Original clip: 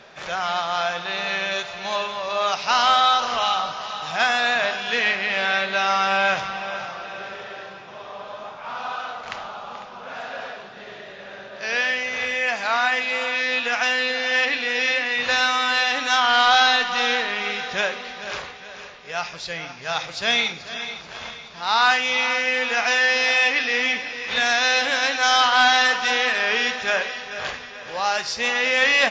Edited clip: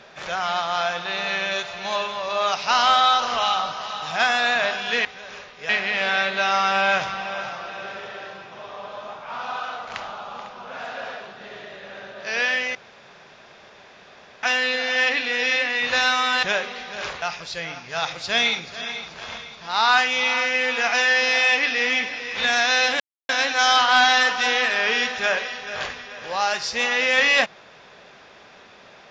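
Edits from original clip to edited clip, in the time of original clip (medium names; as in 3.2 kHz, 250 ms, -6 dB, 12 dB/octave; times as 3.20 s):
12.11–13.79 s: room tone
15.79–17.72 s: delete
18.51–19.15 s: move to 5.05 s
24.93 s: insert silence 0.29 s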